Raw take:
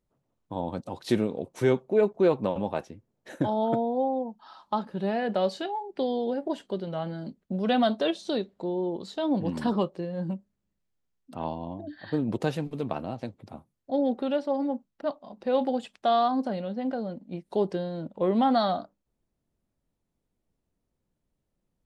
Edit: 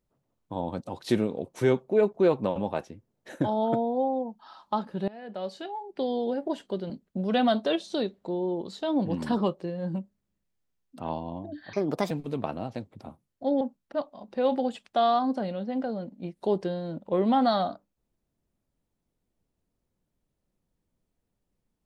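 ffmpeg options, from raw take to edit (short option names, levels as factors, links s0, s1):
-filter_complex "[0:a]asplit=6[s0][s1][s2][s3][s4][s5];[s0]atrim=end=5.08,asetpts=PTS-STARTPTS,afade=t=out:st=5.076:d=0.004:c=hsin:silence=0.0891251[s6];[s1]atrim=start=5.08:end=6.902,asetpts=PTS-STARTPTS,afade=t=in:d=1.11:silence=0.0891251[s7];[s2]atrim=start=7.248:end=12.084[s8];[s3]atrim=start=12.08:end=12.58,asetpts=PTS-STARTPTS,asetrate=58212,aresample=44100[s9];[s4]atrim=start=12.576:end=14.082[s10];[s5]atrim=start=14.698[s11];[s6][s7]concat=n=2:v=0:a=1[s12];[s12][s8]acrossfade=d=0.004:c1=hsin:c2=hsin[s13];[s13][s9]acrossfade=d=0.004:c1=hsin:c2=hsin[s14];[s14][s10]acrossfade=d=0.004:c1=hsin:c2=hsin[s15];[s15][s11]acrossfade=d=0.004:c1=hsin:c2=hsin"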